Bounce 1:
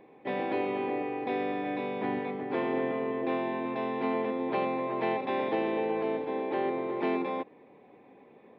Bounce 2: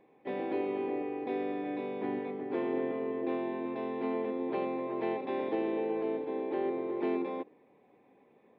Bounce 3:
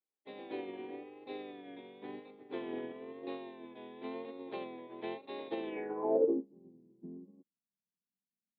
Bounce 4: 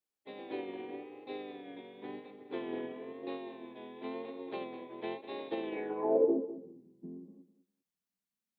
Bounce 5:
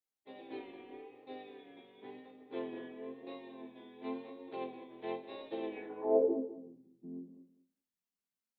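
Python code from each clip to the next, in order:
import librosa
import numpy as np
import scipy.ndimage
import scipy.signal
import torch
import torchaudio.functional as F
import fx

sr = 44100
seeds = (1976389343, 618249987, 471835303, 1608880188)

y1 = fx.dynamic_eq(x, sr, hz=350.0, q=1.2, threshold_db=-45.0, ratio=4.0, max_db=8)
y1 = y1 * librosa.db_to_amplitude(-8.0)
y2 = fx.filter_sweep_lowpass(y1, sr, from_hz=3700.0, to_hz=190.0, start_s=5.66, end_s=6.47, q=4.9)
y2 = fx.vibrato(y2, sr, rate_hz=0.98, depth_cents=76.0)
y2 = fx.upward_expand(y2, sr, threshold_db=-53.0, expansion=2.5)
y2 = y2 * librosa.db_to_amplitude(1.5)
y3 = fx.echo_feedback(y2, sr, ms=201, feedback_pct=20, wet_db=-13.5)
y3 = y3 * librosa.db_to_amplitude(1.5)
y4 = fx.resonator_bank(y3, sr, root=41, chord='major', decay_s=0.31)
y4 = y4 * librosa.db_to_amplitude(7.5)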